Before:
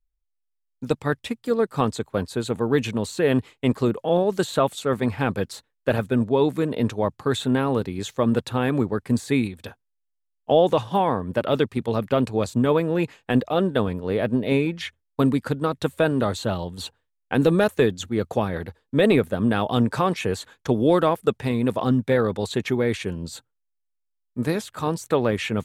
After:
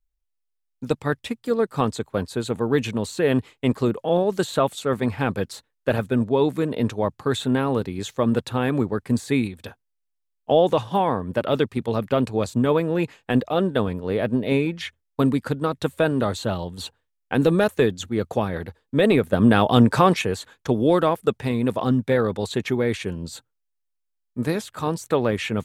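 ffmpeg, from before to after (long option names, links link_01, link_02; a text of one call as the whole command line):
ffmpeg -i in.wav -filter_complex "[0:a]asplit=3[link_01][link_02][link_03];[link_01]atrim=end=19.332[link_04];[link_02]atrim=start=19.328:end=20.222,asetpts=PTS-STARTPTS,volume=5.5dB[link_05];[link_03]atrim=start=20.218[link_06];[link_04][link_05]acrossfade=duration=0.004:curve1=hsin:curve2=hsin[link_07];[link_07][link_06]acrossfade=duration=0.004:curve1=hsin:curve2=hsin" out.wav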